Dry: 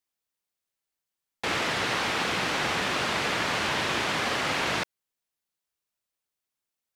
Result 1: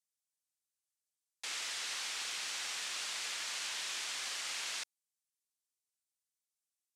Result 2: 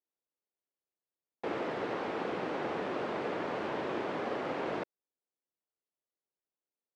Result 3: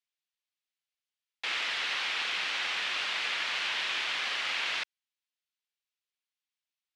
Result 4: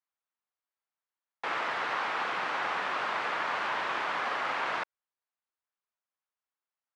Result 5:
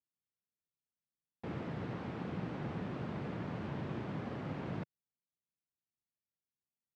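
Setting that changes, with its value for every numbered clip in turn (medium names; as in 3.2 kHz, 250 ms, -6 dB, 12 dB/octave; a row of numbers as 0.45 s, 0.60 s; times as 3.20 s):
band-pass filter, frequency: 8 kHz, 410 Hz, 3 kHz, 1.1 kHz, 140 Hz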